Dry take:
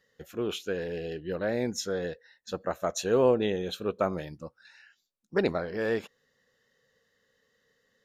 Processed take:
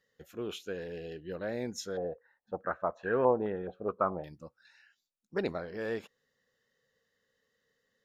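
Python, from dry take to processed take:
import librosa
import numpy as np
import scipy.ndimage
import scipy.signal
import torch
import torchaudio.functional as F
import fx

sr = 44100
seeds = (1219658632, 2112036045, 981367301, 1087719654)

y = fx.filter_held_lowpass(x, sr, hz=4.7, low_hz=710.0, high_hz=1700.0, at=(1.97, 4.24))
y = y * librosa.db_to_amplitude(-6.5)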